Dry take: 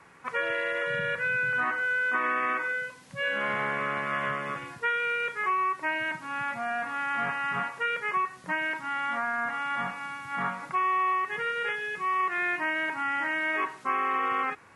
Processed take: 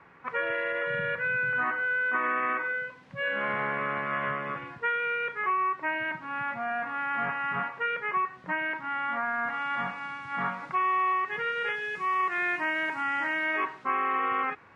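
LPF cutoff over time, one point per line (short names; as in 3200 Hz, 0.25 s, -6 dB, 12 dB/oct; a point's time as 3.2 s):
9.14 s 2600 Hz
9.63 s 4300 Hz
11.33 s 4300 Hz
12.12 s 7300 Hz
13.24 s 7300 Hz
13.82 s 3300 Hz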